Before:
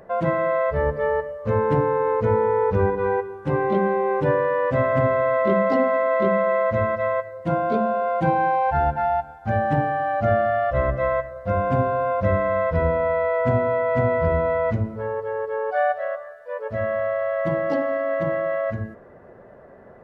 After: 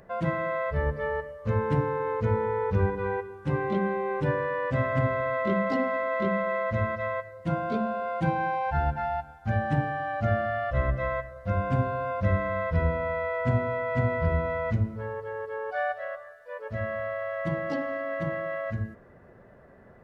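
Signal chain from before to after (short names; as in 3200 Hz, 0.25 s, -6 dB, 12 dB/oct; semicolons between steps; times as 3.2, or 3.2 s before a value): bell 600 Hz -9 dB 2.6 oct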